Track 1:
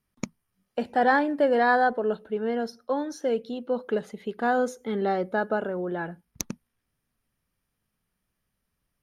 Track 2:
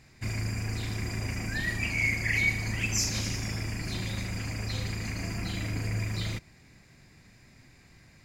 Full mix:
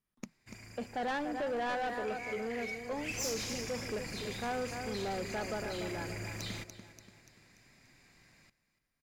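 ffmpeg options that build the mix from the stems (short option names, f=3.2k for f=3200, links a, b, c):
-filter_complex "[0:a]volume=-8.5dB,asplit=2[a][b];[b]volume=-9.5dB[c];[1:a]lowshelf=f=320:g=-6,adelay=250,volume=-3.5dB,afade=t=in:st=2.94:d=0.21:silence=0.281838,asplit=2[d][e];[e]volume=-17.5dB[f];[c][f]amix=inputs=2:normalize=0,aecho=0:1:290|580|870|1160|1450|1740:1|0.44|0.194|0.0852|0.0375|0.0165[g];[a][d][g]amix=inputs=3:normalize=0,equalizer=f=82:w=1.5:g=-6.5,asoftclip=type=tanh:threshold=-31dB"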